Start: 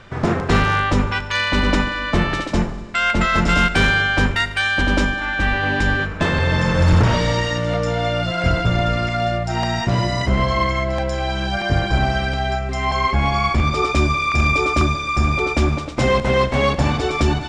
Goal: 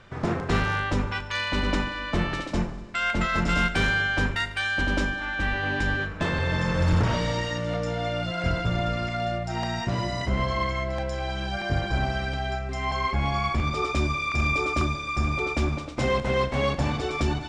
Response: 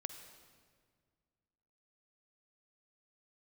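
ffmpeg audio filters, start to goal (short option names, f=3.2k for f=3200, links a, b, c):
-filter_complex "[1:a]atrim=start_sample=2205,atrim=end_sample=3969,asetrate=88200,aresample=44100[a];[0:a][a]afir=irnorm=-1:irlink=0,volume=1dB"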